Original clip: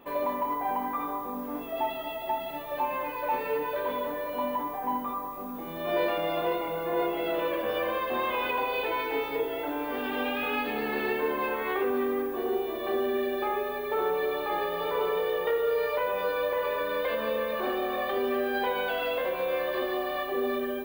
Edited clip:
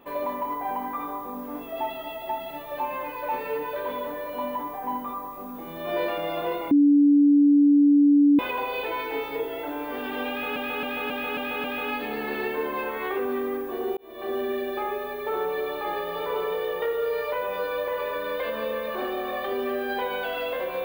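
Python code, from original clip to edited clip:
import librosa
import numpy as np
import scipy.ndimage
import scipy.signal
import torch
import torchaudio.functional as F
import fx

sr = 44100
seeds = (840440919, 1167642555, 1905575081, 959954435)

y = fx.edit(x, sr, fx.bleep(start_s=6.71, length_s=1.68, hz=288.0, db=-13.5),
    fx.repeat(start_s=10.29, length_s=0.27, count=6),
    fx.fade_in_span(start_s=12.62, length_s=0.4), tone=tone)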